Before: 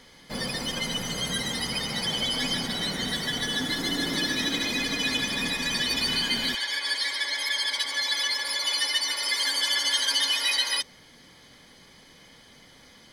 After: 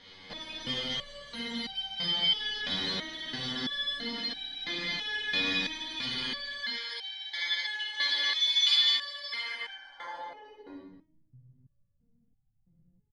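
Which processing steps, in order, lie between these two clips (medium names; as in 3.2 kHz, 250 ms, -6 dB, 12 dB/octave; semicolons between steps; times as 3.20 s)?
8.33–8.74 s: frequency weighting ITU-R 468; on a send: loudspeakers at several distances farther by 19 m -2 dB, 71 m -3 dB, 82 m -11 dB; on the sum: low-pass sweep 3.7 kHz -> 120 Hz, 9.31–11.31 s; in parallel at +3 dB: compression, threshold -31 dBFS, peak gain reduction 22 dB; on the sum: resonator arpeggio 3 Hz 95–770 Hz; trim -2 dB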